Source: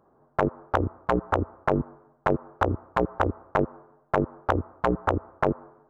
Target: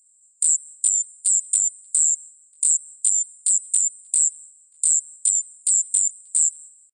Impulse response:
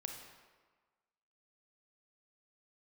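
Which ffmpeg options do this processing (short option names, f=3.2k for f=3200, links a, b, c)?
-filter_complex "[0:a]afftfilt=real='real(if(lt(b,272),68*(eq(floor(b/68),0)*1+eq(floor(b/68),1)*2+eq(floor(b/68),2)*3+eq(floor(b/68),3)*0)+mod(b,68),b),0)':imag='imag(if(lt(b,272),68*(eq(floor(b/68),0)*1+eq(floor(b/68),1)*2+eq(floor(b/68),2)*3+eq(floor(b/68),3)*0)+mod(b,68),b),0)':win_size=2048:overlap=0.75,asetrate=37485,aresample=44100,highpass=f=2.5k:t=q:w=5.8,asetrate=83250,aresample=44100,atempo=0.529732,asplit=2[a][b];[b]adelay=583.1,volume=-25dB,highshelf=f=4k:g=-13.1[c];[a][c]amix=inputs=2:normalize=0,volume=1dB"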